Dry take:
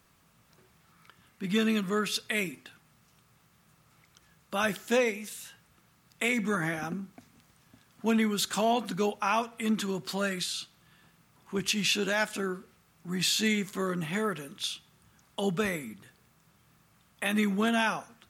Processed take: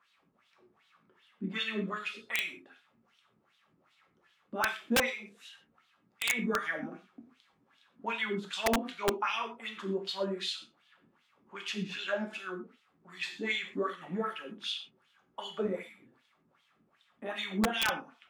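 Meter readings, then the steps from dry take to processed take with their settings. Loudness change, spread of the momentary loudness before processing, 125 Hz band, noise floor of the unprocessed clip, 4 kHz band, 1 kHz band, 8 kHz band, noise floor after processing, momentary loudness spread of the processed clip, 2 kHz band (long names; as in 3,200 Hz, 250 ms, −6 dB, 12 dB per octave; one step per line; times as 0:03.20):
−4.5 dB, 13 LU, −8.0 dB, −65 dBFS, −3.5 dB, −3.5 dB, −7.5 dB, −72 dBFS, 15 LU, −2.5 dB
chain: LFO wah 2.6 Hz 250–3,600 Hz, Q 3.5
reverb whose tail is shaped and stops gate 150 ms falling, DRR 3 dB
wrap-around overflow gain 23.5 dB
level +4 dB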